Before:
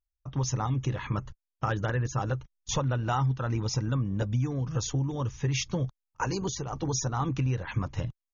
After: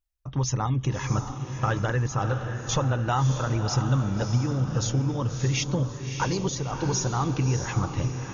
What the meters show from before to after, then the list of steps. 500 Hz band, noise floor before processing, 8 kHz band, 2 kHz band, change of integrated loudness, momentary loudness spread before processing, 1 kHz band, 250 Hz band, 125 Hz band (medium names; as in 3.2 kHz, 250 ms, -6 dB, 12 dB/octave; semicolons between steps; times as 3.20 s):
+4.0 dB, under -85 dBFS, no reading, +4.0 dB, +4.0 dB, 6 LU, +4.0 dB, +4.0 dB, +4.0 dB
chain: echo that smears into a reverb 624 ms, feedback 46%, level -7 dB; trim +3 dB